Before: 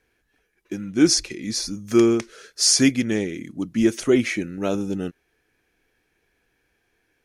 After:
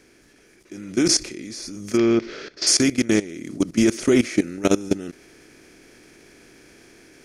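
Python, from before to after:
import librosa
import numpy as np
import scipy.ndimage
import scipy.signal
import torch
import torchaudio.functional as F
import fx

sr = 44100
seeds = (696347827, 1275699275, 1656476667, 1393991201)

y = fx.bin_compress(x, sr, power=0.6)
y = fx.level_steps(y, sr, step_db=18)
y = fx.lowpass(y, sr, hz=4500.0, slope=24, at=(1.97, 2.67))
y = fx.rider(y, sr, range_db=4, speed_s=2.0)
y = y * 10.0 ** (2.0 / 20.0)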